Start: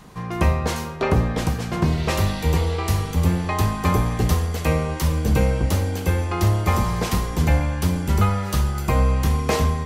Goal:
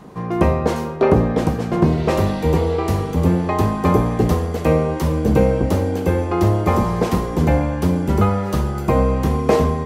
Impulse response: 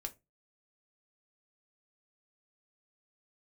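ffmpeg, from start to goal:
-af "equalizer=frequency=380:width=0.34:gain=14.5,volume=-5.5dB"

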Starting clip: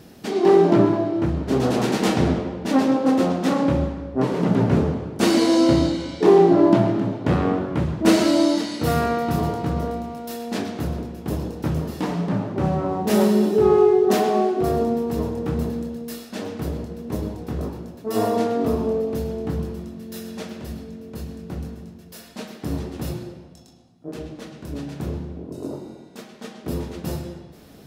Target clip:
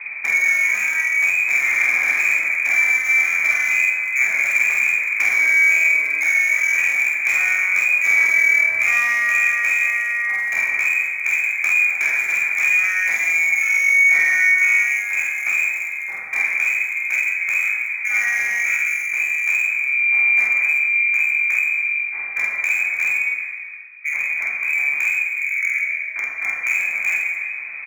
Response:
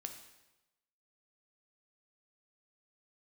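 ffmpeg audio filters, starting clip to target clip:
-filter_complex "[0:a]acrossover=split=110[link_01][link_02];[link_02]alimiter=limit=-12.5dB:level=0:latency=1:release=32[link_03];[link_01][link_03]amix=inputs=2:normalize=0,lowpass=frequency=2200:width_type=q:width=0.5098,lowpass=frequency=2200:width_type=q:width=0.6013,lowpass=frequency=2200:width_type=q:width=0.9,lowpass=frequency=2200:width_type=q:width=2.563,afreqshift=-2600,acrossover=split=280|810[link_04][link_05][link_06];[link_04]acompressor=threshold=-59dB:ratio=4[link_07];[link_05]acompressor=threshold=-51dB:ratio=4[link_08];[link_06]acompressor=threshold=-34dB:ratio=4[link_09];[link_07][link_08][link_09]amix=inputs=3:normalize=0,asplit=2[link_10][link_11];[link_11]volume=30dB,asoftclip=hard,volume=-30dB,volume=-4.5dB[link_12];[link_10][link_12]amix=inputs=2:normalize=0,asplit=2[link_13][link_14];[link_14]adelay=48,volume=-2dB[link_15];[link_13][link_15]amix=inputs=2:normalize=0[link_16];[1:a]atrim=start_sample=2205[link_17];[link_16][link_17]afir=irnorm=-1:irlink=0,crystalizer=i=8.5:c=0,volume=3.5dB"

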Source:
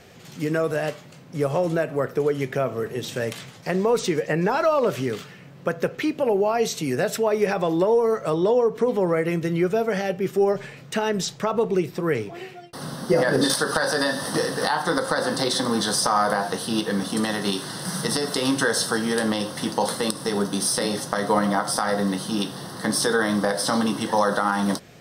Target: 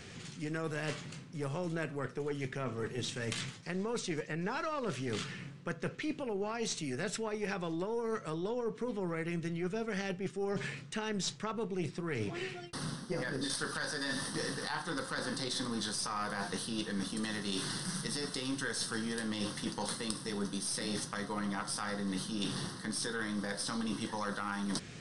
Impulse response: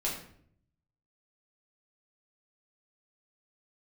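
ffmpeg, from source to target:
-af "equalizer=frequency=640:width_type=o:width=1.1:gain=-11,areverse,acompressor=threshold=-35dB:ratio=10,areverse,aeval=exprs='(tanh(17.8*val(0)+0.6)-tanh(0.6))/17.8':channel_layout=same,aresample=22050,aresample=44100,volume=4.5dB"

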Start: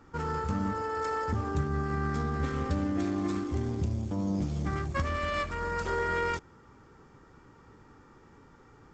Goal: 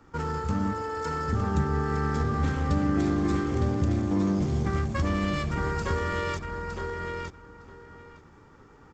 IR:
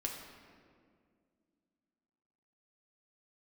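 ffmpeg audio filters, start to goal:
-filter_complex "[0:a]acrossover=split=350|3000[link_01][link_02][link_03];[link_02]acompressor=threshold=-34dB:ratio=6[link_04];[link_01][link_04][link_03]amix=inputs=3:normalize=0,asplit=2[link_05][link_06];[link_06]aeval=exprs='sgn(val(0))*max(abs(val(0))-0.00282,0)':channel_layout=same,volume=-5.5dB[link_07];[link_05][link_07]amix=inputs=2:normalize=0,asplit=2[link_08][link_09];[link_09]adelay=911,lowpass=frequency=4400:poles=1,volume=-3dB,asplit=2[link_10][link_11];[link_11]adelay=911,lowpass=frequency=4400:poles=1,volume=0.17,asplit=2[link_12][link_13];[link_13]adelay=911,lowpass=frequency=4400:poles=1,volume=0.17[link_14];[link_08][link_10][link_12][link_14]amix=inputs=4:normalize=0"

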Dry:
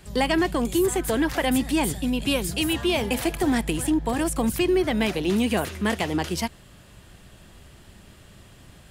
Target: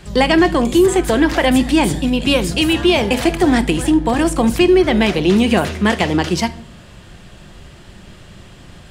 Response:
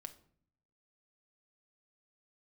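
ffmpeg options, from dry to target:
-filter_complex "[0:a]asplit=2[link_01][link_02];[1:a]atrim=start_sample=2205,lowpass=8100[link_03];[link_02][link_03]afir=irnorm=-1:irlink=0,volume=11dB[link_04];[link_01][link_04]amix=inputs=2:normalize=0"

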